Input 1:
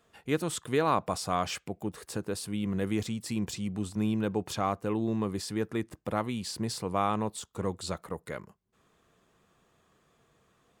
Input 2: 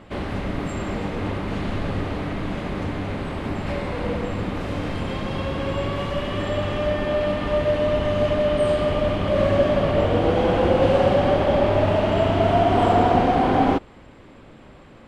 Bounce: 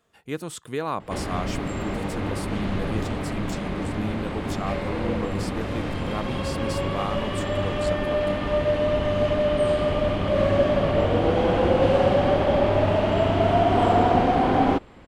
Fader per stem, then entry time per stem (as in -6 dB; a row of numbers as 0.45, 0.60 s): -2.0, -1.5 dB; 0.00, 1.00 s